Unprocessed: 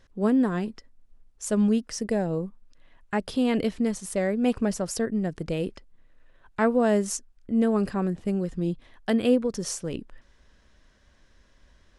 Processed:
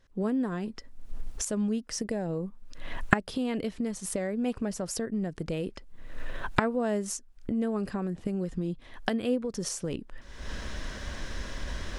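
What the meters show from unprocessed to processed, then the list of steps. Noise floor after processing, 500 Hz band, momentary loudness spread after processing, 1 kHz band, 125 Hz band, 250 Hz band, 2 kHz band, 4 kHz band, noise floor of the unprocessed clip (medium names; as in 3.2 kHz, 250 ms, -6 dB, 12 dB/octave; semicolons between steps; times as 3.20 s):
-52 dBFS, -6.0 dB, 15 LU, -2.0 dB, -3.0 dB, -6.0 dB, +1.5 dB, -1.0 dB, -61 dBFS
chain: recorder AGC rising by 50 dB/s; trim -7 dB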